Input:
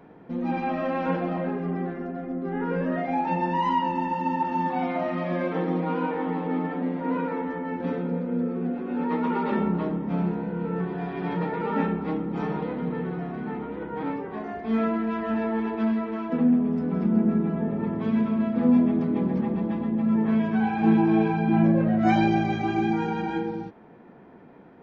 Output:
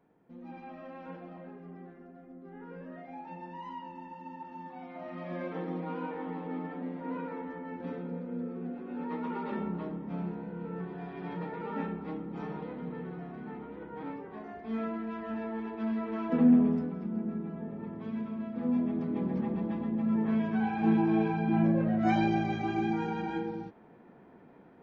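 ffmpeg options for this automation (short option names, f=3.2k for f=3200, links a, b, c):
-af "volume=6.5dB,afade=t=in:st=4.89:d=0.5:silence=0.375837,afade=t=in:st=15.79:d=0.82:silence=0.316228,afade=t=out:st=16.61:d=0.34:silence=0.237137,afade=t=in:st=18.48:d=0.95:silence=0.473151"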